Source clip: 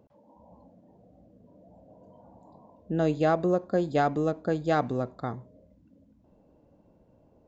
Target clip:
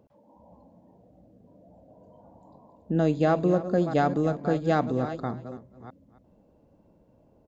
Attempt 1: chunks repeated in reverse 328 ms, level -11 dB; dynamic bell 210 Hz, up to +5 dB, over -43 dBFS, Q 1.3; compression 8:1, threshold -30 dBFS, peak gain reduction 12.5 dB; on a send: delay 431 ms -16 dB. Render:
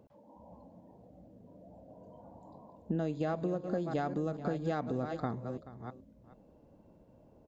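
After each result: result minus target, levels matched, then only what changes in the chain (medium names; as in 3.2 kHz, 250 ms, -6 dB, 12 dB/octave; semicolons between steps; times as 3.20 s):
compression: peak gain reduction +12.5 dB; echo 152 ms late
remove: compression 8:1, threshold -30 dBFS, peak gain reduction 12.5 dB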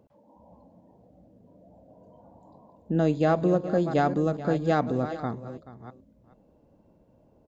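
echo 152 ms late
change: delay 279 ms -16 dB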